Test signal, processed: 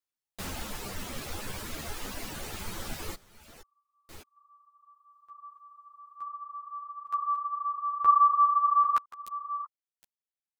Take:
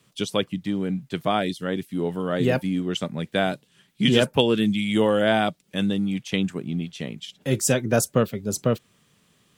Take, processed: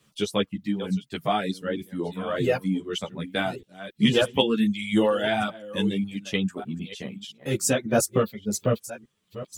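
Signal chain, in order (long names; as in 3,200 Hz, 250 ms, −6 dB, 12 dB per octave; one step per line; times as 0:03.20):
delay that plays each chunk backwards 603 ms, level −12 dB
reverb reduction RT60 1.2 s
string-ensemble chorus
level +2 dB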